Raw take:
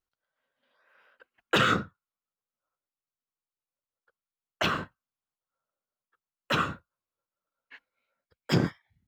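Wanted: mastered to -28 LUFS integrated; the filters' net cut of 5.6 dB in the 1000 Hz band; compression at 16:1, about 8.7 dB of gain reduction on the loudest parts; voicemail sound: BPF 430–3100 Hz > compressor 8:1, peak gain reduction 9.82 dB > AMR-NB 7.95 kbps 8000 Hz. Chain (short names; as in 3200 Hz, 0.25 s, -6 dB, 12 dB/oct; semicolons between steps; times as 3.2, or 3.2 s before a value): bell 1000 Hz -8 dB; compressor 16:1, threshold -27 dBFS; BPF 430–3100 Hz; compressor 8:1, threshold -37 dBFS; gain +20 dB; AMR-NB 7.95 kbps 8000 Hz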